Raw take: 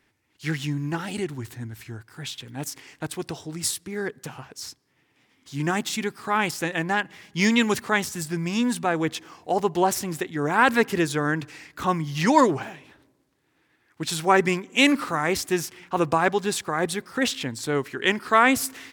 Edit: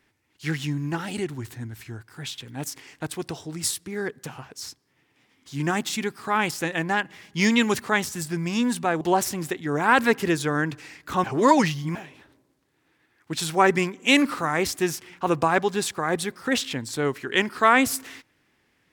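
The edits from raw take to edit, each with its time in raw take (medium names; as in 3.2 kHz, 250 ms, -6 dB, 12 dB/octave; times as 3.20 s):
9.01–9.71 s: delete
11.94–12.65 s: reverse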